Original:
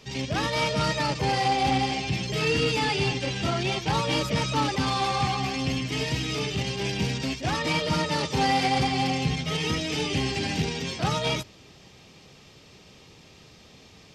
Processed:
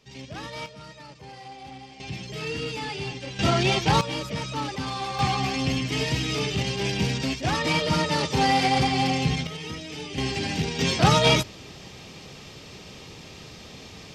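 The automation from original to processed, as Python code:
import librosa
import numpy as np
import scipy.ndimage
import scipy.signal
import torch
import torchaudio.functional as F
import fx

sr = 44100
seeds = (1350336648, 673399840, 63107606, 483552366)

y = fx.gain(x, sr, db=fx.steps((0.0, -10.0), (0.66, -18.5), (2.0, -7.0), (3.39, 5.0), (4.01, -5.0), (5.19, 2.0), (9.47, -8.0), (10.18, 0.0), (10.79, 8.0)))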